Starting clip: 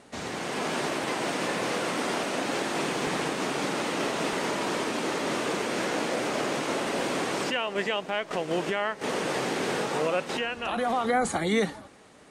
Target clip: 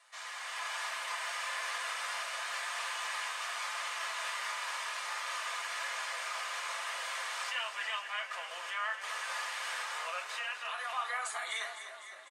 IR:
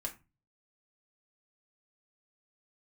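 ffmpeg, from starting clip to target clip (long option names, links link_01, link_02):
-filter_complex "[0:a]highpass=frequency=1000:width=0.5412,highpass=frequency=1000:width=1.3066,asplit=9[link_01][link_02][link_03][link_04][link_05][link_06][link_07][link_08][link_09];[link_02]adelay=253,afreqshift=-30,volume=-10dB[link_10];[link_03]adelay=506,afreqshift=-60,volume=-14dB[link_11];[link_04]adelay=759,afreqshift=-90,volume=-18dB[link_12];[link_05]adelay=1012,afreqshift=-120,volume=-22dB[link_13];[link_06]adelay=1265,afreqshift=-150,volume=-26.1dB[link_14];[link_07]adelay=1518,afreqshift=-180,volume=-30.1dB[link_15];[link_08]adelay=1771,afreqshift=-210,volume=-34.1dB[link_16];[link_09]adelay=2024,afreqshift=-240,volume=-38.1dB[link_17];[link_01][link_10][link_11][link_12][link_13][link_14][link_15][link_16][link_17]amix=inputs=9:normalize=0[link_18];[1:a]atrim=start_sample=2205[link_19];[link_18][link_19]afir=irnorm=-1:irlink=0,volume=-4.5dB"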